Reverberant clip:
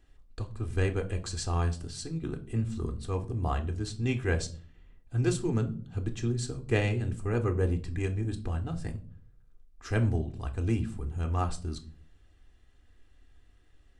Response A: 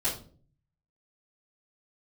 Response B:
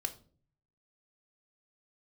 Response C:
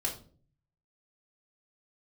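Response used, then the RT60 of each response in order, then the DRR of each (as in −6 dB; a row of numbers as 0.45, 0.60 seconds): B; 0.45, 0.45, 0.45 seconds; −11.0, 6.5, −2.0 decibels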